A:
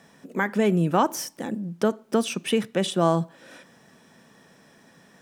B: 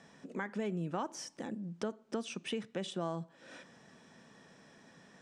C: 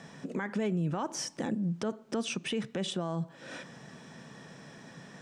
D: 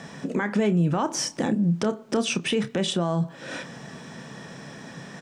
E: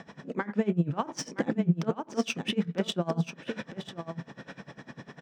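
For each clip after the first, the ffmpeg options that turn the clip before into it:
-af "lowpass=f=8.1k:w=0.5412,lowpass=f=8.1k:w=1.3066,acompressor=threshold=-38dB:ratio=2,volume=-4.5dB"
-af "equalizer=f=140:w=2.7:g=7.5,alimiter=level_in=8dB:limit=-24dB:level=0:latency=1:release=98,volume=-8dB,volume=8.5dB"
-filter_complex "[0:a]asplit=2[a][b];[b]adelay=29,volume=-12dB[c];[a][c]amix=inputs=2:normalize=0,volume=8.5dB"
-af "adynamicsmooth=sensitivity=1.5:basefreq=4.3k,aecho=1:1:967:0.422,aeval=exprs='val(0)*pow(10,-22*(0.5-0.5*cos(2*PI*10*n/s))/20)':c=same"

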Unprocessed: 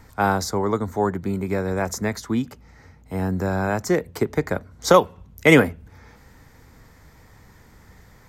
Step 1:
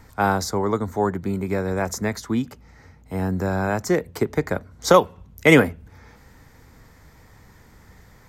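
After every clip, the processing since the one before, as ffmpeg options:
-af anull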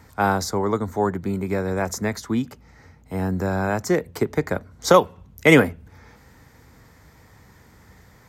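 -af "highpass=54"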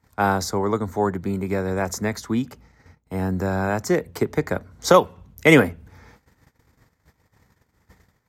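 -af "agate=range=-21dB:threshold=-48dB:ratio=16:detection=peak"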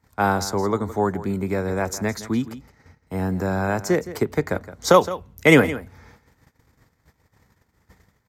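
-af "aecho=1:1:166:0.178"

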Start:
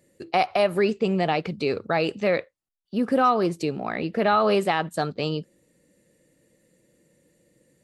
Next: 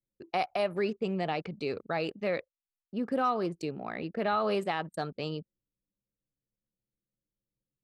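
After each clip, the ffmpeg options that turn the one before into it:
-af "anlmdn=1.58,volume=-8.5dB"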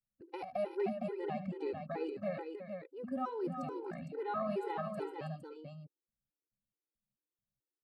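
-af "equalizer=f=4k:w=0.48:g=-12.5,aecho=1:1:75|322|460:0.224|0.355|0.501,afftfilt=real='re*gt(sin(2*PI*2.3*pts/sr)*(1-2*mod(floor(b*sr/1024/260),2)),0)':imag='im*gt(sin(2*PI*2.3*pts/sr)*(1-2*mod(floor(b*sr/1024/260),2)),0)':win_size=1024:overlap=0.75,volume=-3.5dB"

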